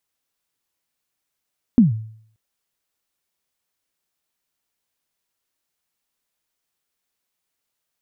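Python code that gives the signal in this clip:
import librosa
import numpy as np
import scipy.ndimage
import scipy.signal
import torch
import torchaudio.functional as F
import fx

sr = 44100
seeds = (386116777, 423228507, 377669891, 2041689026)

y = fx.drum_kick(sr, seeds[0], length_s=0.58, level_db=-5.5, start_hz=260.0, end_hz=110.0, sweep_ms=141.0, decay_s=0.6, click=False)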